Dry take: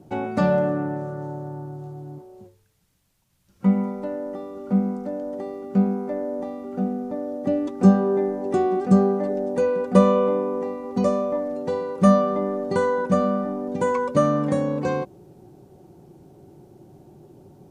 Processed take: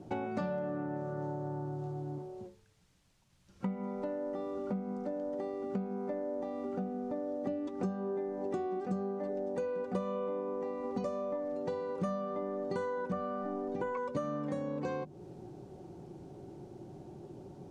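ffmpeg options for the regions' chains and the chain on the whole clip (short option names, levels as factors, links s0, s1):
-filter_complex "[0:a]asettb=1/sr,asplit=3[s0][s1][s2];[s0]atrim=end=13.124[s3];[s1]atrim=start=13.12:end=13.97,asetpts=PTS-STARTPTS,afade=t=in:d=0.004:c=qsin,afade=t=out:st=0.846:d=0.004:c=qsin,acrossover=split=3000[s4][s5];[s5]acompressor=threshold=0.001:ratio=4:attack=1:release=60[s6];[s4][s6]amix=inputs=2:normalize=0,aecho=1:1:2.7:0.31,atrim=end_sample=37485,asubboost=boost=8.5:cutoff=57[s7];[s2]atrim=start=13.966[s8];[s3][s7]acrossfade=d=0.004:c1=hsin:c2=qsin[s9];[s9][s8]acrossfade=d=0.004:c1=qsin:c2=hsin,lowpass=7400,bandreject=f=50:t=h:w=6,bandreject=f=100:t=h:w=6,bandreject=f=150:t=h:w=6,bandreject=f=200:t=h:w=6,bandreject=f=250:t=h:w=6,acompressor=threshold=0.02:ratio=6"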